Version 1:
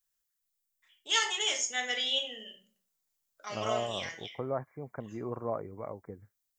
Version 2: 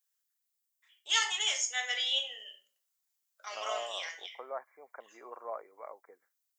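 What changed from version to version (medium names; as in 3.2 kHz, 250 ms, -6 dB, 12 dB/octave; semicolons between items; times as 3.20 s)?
master: add Bessel high-pass 810 Hz, order 4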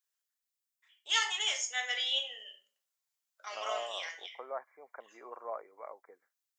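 first voice: add treble shelf 7.1 kHz -7.5 dB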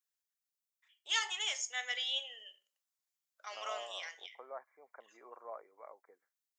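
first voice: send -11.0 dB; second voice -6.5 dB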